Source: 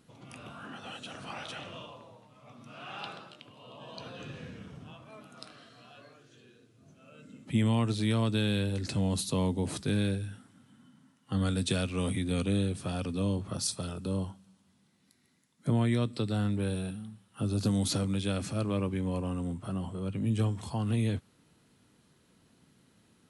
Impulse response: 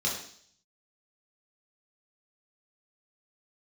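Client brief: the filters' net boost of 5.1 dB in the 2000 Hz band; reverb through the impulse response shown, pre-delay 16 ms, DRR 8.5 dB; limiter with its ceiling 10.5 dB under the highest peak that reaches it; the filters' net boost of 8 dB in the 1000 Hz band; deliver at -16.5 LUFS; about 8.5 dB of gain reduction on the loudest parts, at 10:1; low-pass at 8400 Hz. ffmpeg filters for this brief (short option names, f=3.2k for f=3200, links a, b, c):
-filter_complex "[0:a]lowpass=8.4k,equalizer=f=1k:t=o:g=9,equalizer=f=2k:t=o:g=4,acompressor=threshold=-30dB:ratio=10,alimiter=level_in=5.5dB:limit=-24dB:level=0:latency=1,volume=-5.5dB,asplit=2[a][b];[1:a]atrim=start_sample=2205,adelay=16[c];[b][c]afir=irnorm=-1:irlink=0,volume=-16dB[d];[a][d]amix=inputs=2:normalize=0,volume=21.5dB"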